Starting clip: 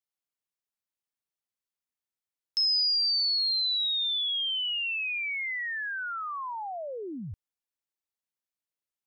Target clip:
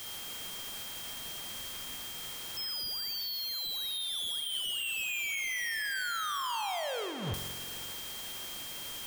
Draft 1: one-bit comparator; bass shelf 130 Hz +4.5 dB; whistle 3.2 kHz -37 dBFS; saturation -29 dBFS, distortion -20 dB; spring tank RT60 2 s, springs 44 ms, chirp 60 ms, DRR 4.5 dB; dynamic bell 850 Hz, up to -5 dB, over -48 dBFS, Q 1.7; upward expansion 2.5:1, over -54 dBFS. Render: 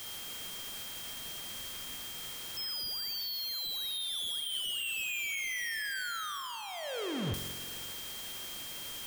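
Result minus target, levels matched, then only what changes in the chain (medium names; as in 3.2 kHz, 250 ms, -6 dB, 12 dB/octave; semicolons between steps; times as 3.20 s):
250 Hz band +5.0 dB
change: dynamic bell 270 Hz, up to -5 dB, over -48 dBFS, Q 1.7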